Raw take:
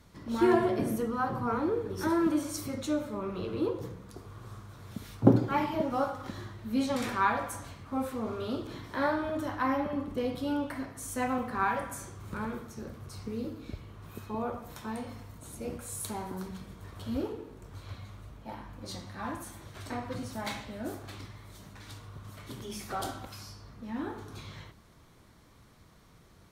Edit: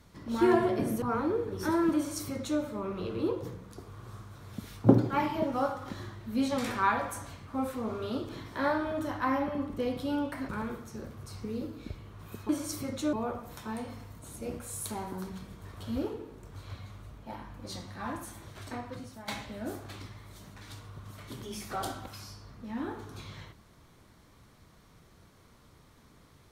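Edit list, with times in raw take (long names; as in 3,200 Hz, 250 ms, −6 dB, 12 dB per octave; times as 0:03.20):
0:01.02–0:01.40: remove
0:02.34–0:02.98: duplicate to 0:14.32
0:10.87–0:12.32: remove
0:19.71–0:20.47: fade out, to −11.5 dB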